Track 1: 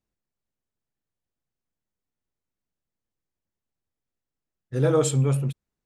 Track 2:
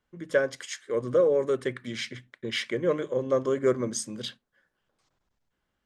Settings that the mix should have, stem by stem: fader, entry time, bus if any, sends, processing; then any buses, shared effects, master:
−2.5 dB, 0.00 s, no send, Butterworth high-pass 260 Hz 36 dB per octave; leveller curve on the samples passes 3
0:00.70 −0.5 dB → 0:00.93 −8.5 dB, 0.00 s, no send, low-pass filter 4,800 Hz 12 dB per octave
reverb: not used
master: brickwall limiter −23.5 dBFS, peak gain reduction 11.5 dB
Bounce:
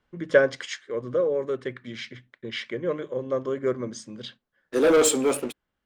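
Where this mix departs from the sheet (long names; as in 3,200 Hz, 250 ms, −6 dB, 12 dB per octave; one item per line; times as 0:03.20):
stem 2 −0.5 dB → +6.0 dB
master: missing brickwall limiter −23.5 dBFS, peak gain reduction 11.5 dB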